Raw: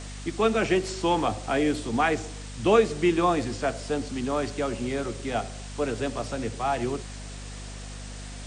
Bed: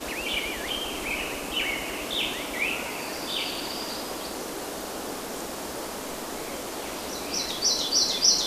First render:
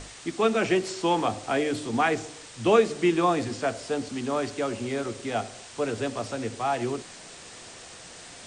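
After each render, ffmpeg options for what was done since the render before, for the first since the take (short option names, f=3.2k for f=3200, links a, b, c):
-af "bandreject=f=50:t=h:w=6,bandreject=f=100:t=h:w=6,bandreject=f=150:t=h:w=6,bandreject=f=200:t=h:w=6,bandreject=f=250:t=h:w=6,bandreject=f=300:t=h:w=6"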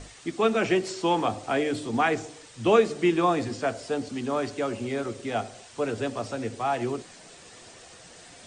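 -af "afftdn=nr=6:nf=-45"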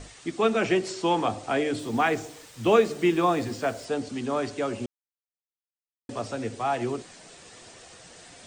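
-filter_complex "[0:a]asettb=1/sr,asplit=3[a][b][c];[a]atrim=end=1.794[d];[b]atrim=start=1.79:end=3.85,asetpts=PTS-STARTPTS,afade=t=in:d=0.004:c=qsin,afade=t=out:st=2.056:d=0.004:c=qsin,acrusher=bits=7:mix=0:aa=0.5[e];[c]atrim=start=3.846[f];[d][e]acrossfade=d=0.004:c1=hsin:c2=qsin[g];[g][f]acrossfade=d=0.004:c1=qsin:c2=hsin,asplit=3[h][i][j];[h]atrim=end=4.86,asetpts=PTS-STARTPTS,afade=t=out:st=4.856:d=0.004:c=hsin[k];[i]atrim=start=4.86:end=6.09,asetpts=PTS-STARTPTS,volume=0[l];[j]atrim=start=6.09,asetpts=PTS-STARTPTS,afade=t=in:d=0.004:c=hsin[m];[k][l][m]concat=n=3:v=0:a=1"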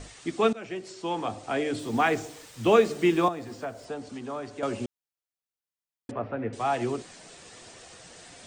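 -filter_complex "[0:a]asettb=1/sr,asplit=3[a][b][c];[a]atrim=end=3.284[d];[b]atrim=start=3.28:end=4.63,asetpts=PTS-STARTPTS,afade=t=in:d=0.004:c=qsin,afade=t=out:st=1.346:d=0.004:c=qsin,acrossover=split=200|650|1300[e][f][g][h];[e]acompressor=threshold=-49dB:ratio=3[i];[f]acompressor=threshold=-41dB:ratio=3[j];[g]acompressor=threshold=-38dB:ratio=3[k];[h]acompressor=threshold=-52dB:ratio=3[l];[i][j][k][l]amix=inputs=4:normalize=0[m];[c]atrim=start=4.626[n];[d][m]acrossfade=d=0.004:c1=hsin:c2=qsin[o];[o][n]acrossfade=d=0.004:c1=qsin:c2=hsin,asettb=1/sr,asplit=3[p][q][r];[p]atrim=end=6.114[s];[q]atrim=start=6.11:end=6.53,asetpts=PTS-STARTPTS,afade=t=in:d=0.004:c=qsin,afade=t=out:st=0.416:d=0.004:c=qsin,lowpass=f=2.2k:w=0.5412,lowpass=f=2.2k:w=1.3066[t];[r]atrim=start=6.526[u];[s][t]acrossfade=d=0.004:c1=hsin:c2=qsin[v];[v][u]acrossfade=d=0.004:c1=qsin:c2=hsin,asplit=2[w][x];[w]atrim=end=0.53,asetpts=PTS-STARTPTS,afade=t=out:st=0.526:d=0.004:c=hsin:silence=0.125893[y];[x]atrim=start=0.53,asetpts=PTS-STARTPTS,afade=t=in:d=1.49:silence=0.125893[z];[y][z]concat=n=2:v=0:a=1"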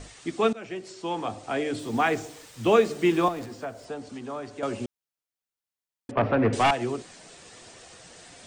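-filter_complex "[0:a]asettb=1/sr,asplit=3[a][b][c];[a]atrim=end=3.044[d];[b]atrim=start=3.04:end=3.46,asetpts=PTS-STARTPTS,afade=t=in:d=0.004:c=qsin,afade=t=out:st=0.416:d=0.004:c=qsin,aeval=exprs='val(0)+0.5*0.0112*sgn(val(0))':c=same[e];[c]atrim=start=3.456[f];[d][e]acrossfade=d=0.004:c1=hsin:c2=qsin[g];[g][f]acrossfade=d=0.004:c1=qsin:c2=hsin,asettb=1/sr,asplit=3[h][i][j];[h]atrim=end=6.174[k];[i]atrim=start=6.17:end=6.71,asetpts=PTS-STARTPTS,afade=t=in:d=0.004:c=qsin,afade=t=out:st=0.536:d=0.004:c=qsin,aeval=exprs='0.158*sin(PI/2*2.51*val(0)/0.158)':c=same[l];[j]atrim=start=6.706[m];[k][l]acrossfade=d=0.004:c1=hsin:c2=qsin[n];[n][m]acrossfade=d=0.004:c1=qsin:c2=hsin"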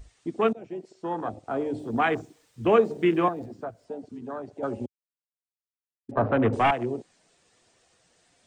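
-af "afwtdn=0.0282"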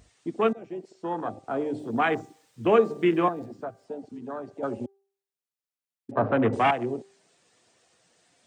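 -af "highpass=110,bandreject=f=393.3:t=h:w=4,bandreject=f=786.6:t=h:w=4,bandreject=f=1.1799k:t=h:w=4,bandreject=f=1.5732k:t=h:w=4,bandreject=f=1.9665k:t=h:w=4"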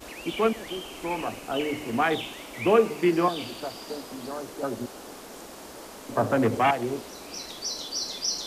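-filter_complex "[1:a]volume=-8.5dB[a];[0:a][a]amix=inputs=2:normalize=0"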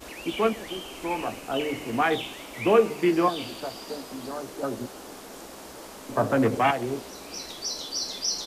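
-filter_complex "[0:a]asplit=2[a][b];[b]adelay=15,volume=-11.5dB[c];[a][c]amix=inputs=2:normalize=0"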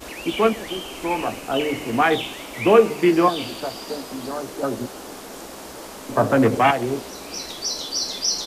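-af "volume=5.5dB"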